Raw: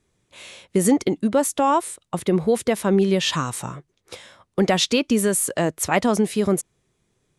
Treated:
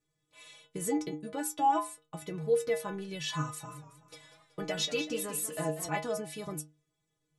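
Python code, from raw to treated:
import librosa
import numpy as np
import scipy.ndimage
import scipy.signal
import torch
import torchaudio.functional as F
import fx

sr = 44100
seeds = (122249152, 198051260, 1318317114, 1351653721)

y = fx.stiff_resonator(x, sr, f0_hz=150.0, decay_s=0.34, stiffness=0.008)
y = fx.echo_warbled(y, sr, ms=188, feedback_pct=46, rate_hz=2.8, cents=114, wet_db=-12, at=(3.52, 5.89))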